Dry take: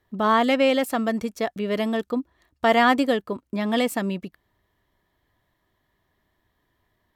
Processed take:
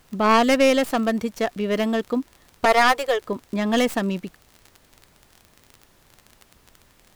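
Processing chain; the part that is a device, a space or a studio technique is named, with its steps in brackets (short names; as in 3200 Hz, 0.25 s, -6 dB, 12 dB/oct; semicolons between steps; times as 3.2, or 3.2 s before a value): 2.65–3.25 Chebyshev high-pass 410 Hz, order 4; record under a worn stylus (tracing distortion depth 0.12 ms; crackle 28/s -33 dBFS; pink noise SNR 34 dB); gain +2 dB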